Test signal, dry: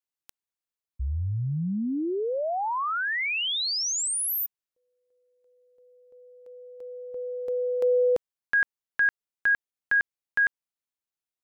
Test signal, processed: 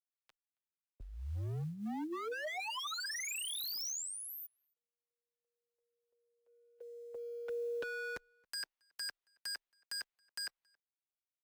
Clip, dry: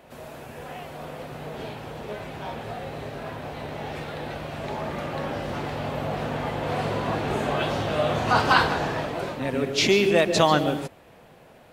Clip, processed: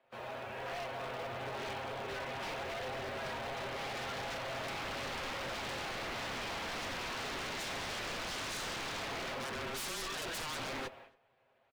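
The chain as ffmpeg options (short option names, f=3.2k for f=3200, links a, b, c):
-filter_complex "[0:a]agate=range=-19dB:threshold=-40dB:ratio=3:release=228:detection=rms,acrossover=split=510 4400:gain=0.251 1 0.1[a][b][c];[a][b][c]amix=inputs=3:normalize=0,aecho=1:1:7.2:0.63,acompressor=threshold=-30dB:ratio=5:attack=4.3:release=26:knee=1:detection=rms,aeval=exprs='0.0178*(abs(mod(val(0)/0.0178+3,4)-2)-1)':c=same,afreqshift=-23,acrusher=bits=8:mode=log:mix=0:aa=0.000001,asplit=2[d][e];[e]adelay=274.1,volume=-30dB,highshelf=f=4k:g=-6.17[f];[d][f]amix=inputs=2:normalize=0" -ar 44100 -c:a aac -b:a 192k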